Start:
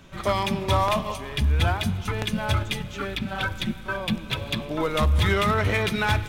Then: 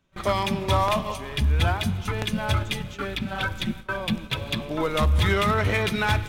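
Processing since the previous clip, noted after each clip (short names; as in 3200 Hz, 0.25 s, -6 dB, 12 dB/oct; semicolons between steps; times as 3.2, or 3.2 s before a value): gate with hold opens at -24 dBFS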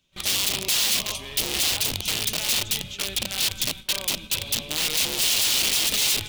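wrapped overs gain 22.5 dB; resonant high shelf 2200 Hz +11.5 dB, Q 1.5; gain -5 dB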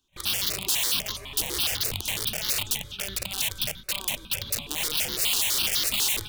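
step phaser 12 Hz 580–2500 Hz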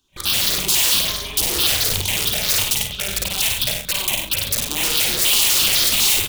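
tapped delay 54/97/137/304 ms -4/-6/-13.5/-19 dB; gain +6.5 dB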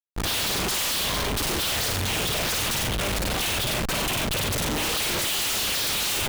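Schmitt trigger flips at -28.5 dBFS; gain -6 dB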